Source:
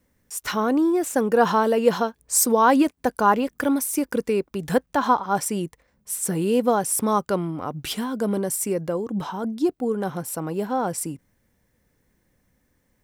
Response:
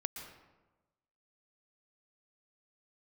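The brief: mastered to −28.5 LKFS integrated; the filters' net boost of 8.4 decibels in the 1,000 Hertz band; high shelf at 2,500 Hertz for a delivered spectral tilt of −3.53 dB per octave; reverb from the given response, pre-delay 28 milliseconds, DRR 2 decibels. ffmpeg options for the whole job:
-filter_complex "[0:a]equalizer=frequency=1000:width_type=o:gain=9,highshelf=frequency=2500:gain=6.5,asplit=2[link_01][link_02];[1:a]atrim=start_sample=2205,adelay=28[link_03];[link_02][link_03]afir=irnorm=-1:irlink=0,volume=-2dB[link_04];[link_01][link_04]amix=inputs=2:normalize=0,volume=-12.5dB"

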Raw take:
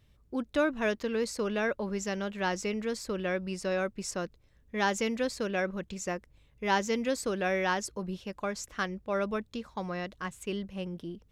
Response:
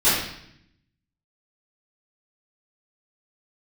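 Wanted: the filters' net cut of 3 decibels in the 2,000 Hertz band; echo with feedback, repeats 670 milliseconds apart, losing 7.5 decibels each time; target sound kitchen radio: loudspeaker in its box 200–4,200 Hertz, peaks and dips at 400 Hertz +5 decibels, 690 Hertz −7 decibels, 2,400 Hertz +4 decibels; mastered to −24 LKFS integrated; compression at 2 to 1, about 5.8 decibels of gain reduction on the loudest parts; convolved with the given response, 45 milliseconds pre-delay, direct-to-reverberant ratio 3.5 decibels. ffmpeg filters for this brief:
-filter_complex "[0:a]equalizer=frequency=2000:width_type=o:gain=-5,acompressor=threshold=-33dB:ratio=2,aecho=1:1:670|1340|2010|2680|3350:0.422|0.177|0.0744|0.0312|0.0131,asplit=2[link_01][link_02];[1:a]atrim=start_sample=2205,adelay=45[link_03];[link_02][link_03]afir=irnorm=-1:irlink=0,volume=-22.5dB[link_04];[link_01][link_04]amix=inputs=2:normalize=0,highpass=200,equalizer=frequency=400:width_type=q:width=4:gain=5,equalizer=frequency=690:width_type=q:width=4:gain=-7,equalizer=frequency=2400:width_type=q:width=4:gain=4,lowpass=frequency=4200:width=0.5412,lowpass=frequency=4200:width=1.3066,volume=10dB"

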